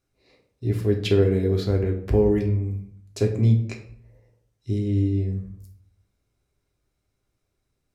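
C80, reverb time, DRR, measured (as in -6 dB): 13.0 dB, 0.60 s, 1.0 dB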